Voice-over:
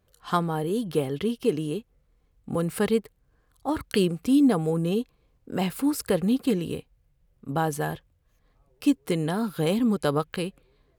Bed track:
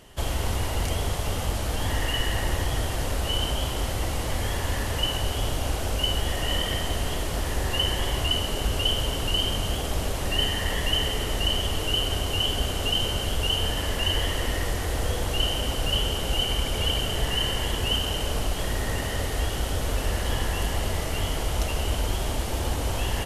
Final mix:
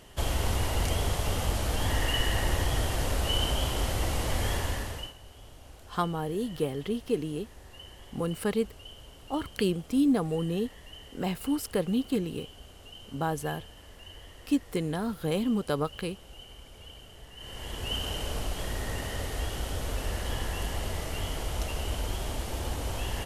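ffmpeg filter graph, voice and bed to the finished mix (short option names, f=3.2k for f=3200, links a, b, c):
-filter_complex "[0:a]adelay=5650,volume=-4.5dB[a];[1:a]volume=15.5dB,afade=t=out:st=4.53:d=0.61:silence=0.0841395,afade=t=in:st=17.36:d=0.7:silence=0.141254[b];[a][b]amix=inputs=2:normalize=0"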